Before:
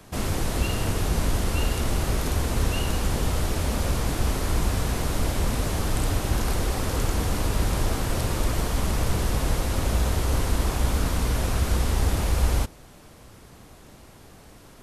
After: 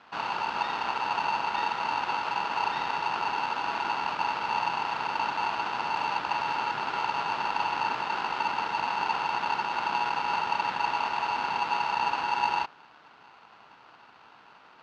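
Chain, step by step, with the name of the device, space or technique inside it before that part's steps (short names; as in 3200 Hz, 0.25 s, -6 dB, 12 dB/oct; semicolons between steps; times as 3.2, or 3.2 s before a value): ring modulator pedal into a guitar cabinet (polarity switched at an audio rate 900 Hz; speaker cabinet 100–4200 Hz, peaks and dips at 100 Hz -7 dB, 560 Hz -4 dB, 1400 Hz +8 dB); gain -6.5 dB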